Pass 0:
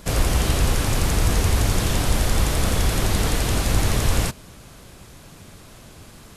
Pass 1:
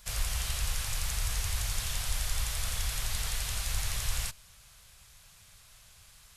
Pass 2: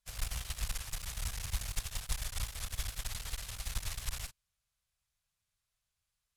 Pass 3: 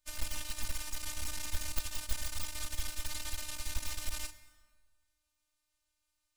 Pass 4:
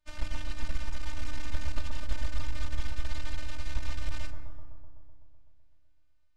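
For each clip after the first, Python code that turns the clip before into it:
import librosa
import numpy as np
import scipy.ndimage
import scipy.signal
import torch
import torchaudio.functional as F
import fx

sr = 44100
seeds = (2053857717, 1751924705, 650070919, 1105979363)

y1 = fx.tone_stack(x, sr, knobs='10-0-10')
y1 = F.gain(torch.from_numpy(y1), -6.0).numpy()
y2 = fx.clip_asym(y1, sr, top_db=-37.0, bottom_db=-22.5)
y2 = fx.upward_expand(y2, sr, threshold_db=-50.0, expansion=2.5)
y2 = F.gain(torch.from_numpy(y2), 1.5).numpy()
y3 = fx.robotise(y2, sr, hz=303.0)
y3 = 10.0 ** (-25.0 / 20.0) * (np.abs((y3 / 10.0 ** (-25.0 / 20.0) + 3.0) % 4.0 - 2.0) - 1.0)
y3 = fx.rev_plate(y3, sr, seeds[0], rt60_s=1.6, hf_ratio=0.7, predelay_ms=0, drr_db=12.5)
y3 = F.gain(torch.from_numpy(y3), 5.0).numpy()
y4 = fx.spacing_loss(y3, sr, db_at_10k=24)
y4 = fx.echo_bbd(y4, sr, ms=126, stages=1024, feedback_pct=73, wet_db=-4.5)
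y4 = F.gain(torch.from_numpy(y4), 5.5).numpy()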